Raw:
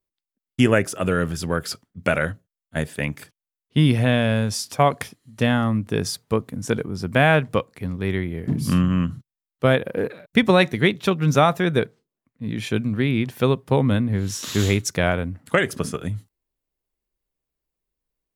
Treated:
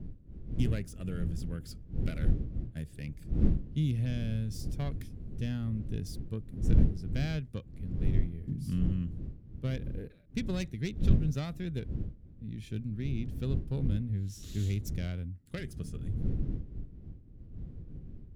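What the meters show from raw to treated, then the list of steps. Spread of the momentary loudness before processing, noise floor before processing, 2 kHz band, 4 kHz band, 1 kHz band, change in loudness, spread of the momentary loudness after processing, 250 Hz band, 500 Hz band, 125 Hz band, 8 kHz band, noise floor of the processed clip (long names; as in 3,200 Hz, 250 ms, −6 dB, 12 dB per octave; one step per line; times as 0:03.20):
12 LU, below −85 dBFS, −25.0 dB, −19.5 dB, −29.5 dB, −12.5 dB, 14 LU, −13.0 dB, −22.5 dB, −8.0 dB, −19.5 dB, −52 dBFS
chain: phase distortion by the signal itself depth 0.098 ms
wind on the microphone 270 Hz −25 dBFS
guitar amp tone stack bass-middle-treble 10-0-1
level +2 dB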